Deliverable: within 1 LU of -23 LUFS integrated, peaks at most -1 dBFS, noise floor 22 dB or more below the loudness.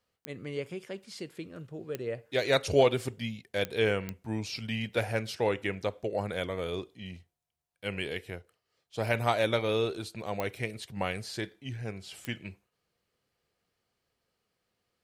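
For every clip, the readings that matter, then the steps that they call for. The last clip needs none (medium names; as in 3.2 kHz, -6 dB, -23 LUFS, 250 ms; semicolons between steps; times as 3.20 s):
clicks found 6; loudness -32.0 LUFS; peak level -12.5 dBFS; loudness target -23.0 LUFS
-> de-click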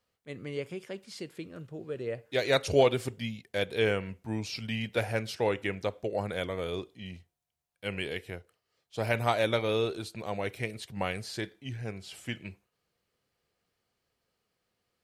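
clicks found 0; loudness -32.0 LUFS; peak level -12.5 dBFS; loudness target -23.0 LUFS
-> trim +9 dB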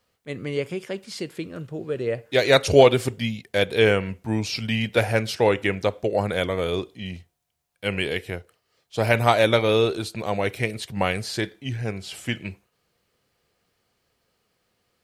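loudness -23.0 LUFS; peak level -3.0 dBFS; noise floor -73 dBFS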